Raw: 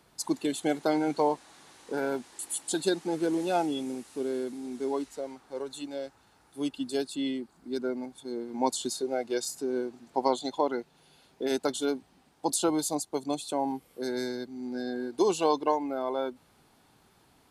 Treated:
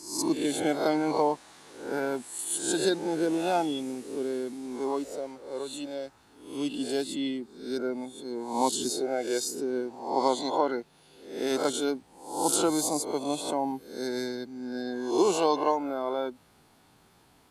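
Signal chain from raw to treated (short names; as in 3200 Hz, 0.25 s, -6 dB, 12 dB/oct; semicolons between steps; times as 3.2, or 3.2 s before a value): spectral swells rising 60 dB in 0.58 s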